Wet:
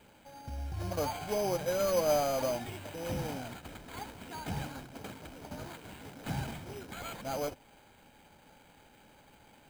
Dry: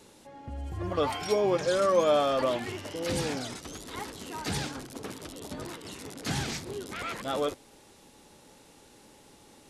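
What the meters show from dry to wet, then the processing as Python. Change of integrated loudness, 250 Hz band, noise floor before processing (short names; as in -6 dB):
-5.0 dB, -5.5 dB, -56 dBFS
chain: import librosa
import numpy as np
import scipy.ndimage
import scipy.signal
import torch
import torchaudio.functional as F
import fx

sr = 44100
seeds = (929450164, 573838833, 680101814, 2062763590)

y = fx.cvsd(x, sr, bps=16000)
y = fx.dynamic_eq(y, sr, hz=1700.0, q=1.1, threshold_db=-43.0, ratio=4.0, max_db=-5)
y = np.repeat(y[::8], 8)[:len(y)]
y = y + 0.44 * np.pad(y, (int(1.3 * sr / 1000.0), 0))[:len(y)]
y = y * librosa.db_to_amplitude(-3.5)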